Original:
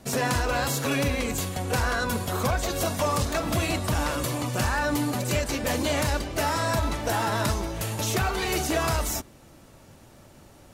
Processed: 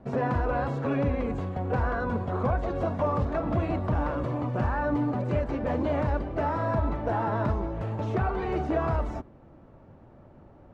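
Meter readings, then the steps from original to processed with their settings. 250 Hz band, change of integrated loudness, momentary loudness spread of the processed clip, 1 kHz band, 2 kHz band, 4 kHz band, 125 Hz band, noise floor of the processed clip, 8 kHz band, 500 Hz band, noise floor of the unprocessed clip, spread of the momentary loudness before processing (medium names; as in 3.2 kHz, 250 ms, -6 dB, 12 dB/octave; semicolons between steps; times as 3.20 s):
0.0 dB, -2.0 dB, 3 LU, -2.0 dB, -8.5 dB, -21.0 dB, 0.0 dB, -53 dBFS, under -30 dB, -0.5 dB, -52 dBFS, 3 LU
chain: low-pass 1.1 kHz 12 dB/octave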